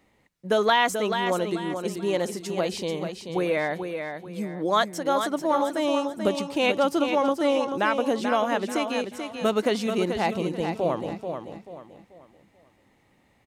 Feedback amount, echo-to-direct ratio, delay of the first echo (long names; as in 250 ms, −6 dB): 34%, −6.5 dB, 436 ms